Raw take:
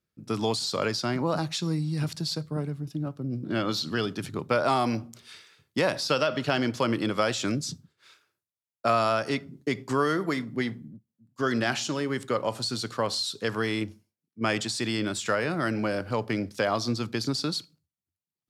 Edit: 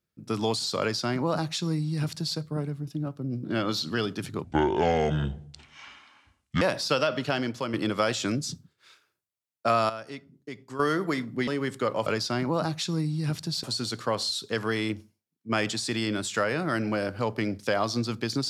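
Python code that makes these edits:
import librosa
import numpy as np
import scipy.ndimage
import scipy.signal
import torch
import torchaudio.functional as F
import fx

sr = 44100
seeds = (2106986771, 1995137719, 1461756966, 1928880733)

y = fx.edit(x, sr, fx.duplicate(start_s=0.8, length_s=1.57, to_s=12.55),
    fx.speed_span(start_s=4.44, length_s=1.37, speed=0.63),
    fx.fade_out_to(start_s=6.31, length_s=0.62, floor_db=-7.0),
    fx.clip_gain(start_s=9.09, length_s=0.9, db=-11.5),
    fx.cut(start_s=10.67, length_s=1.29), tone=tone)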